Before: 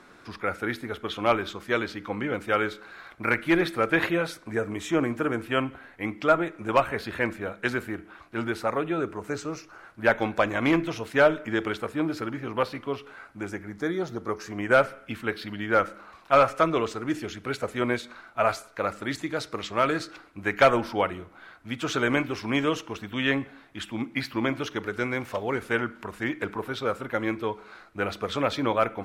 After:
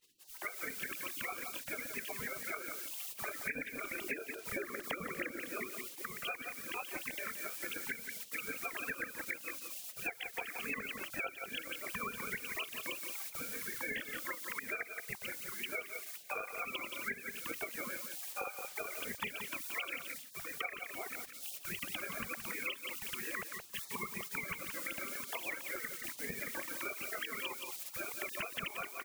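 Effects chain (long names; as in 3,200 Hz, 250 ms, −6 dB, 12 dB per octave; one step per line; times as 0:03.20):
three sine waves on the formant tracks
high-shelf EQ 3,000 Hz −12 dB
background noise blue −67 dBFS
automatic gain control gain up to 10 dB
gate on every frequency bin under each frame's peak −30 dB weak
0:03.99–0:06.02: parametric band 360 Hz +13 dB 0.96 octaves
single-tap delay 173 ms −11 dB
downward compressor 8 to 1, threshold −52 dBFS, peak gain reduction 18.5 dB
one half of a high-frequency compander decoder only
level +15 dB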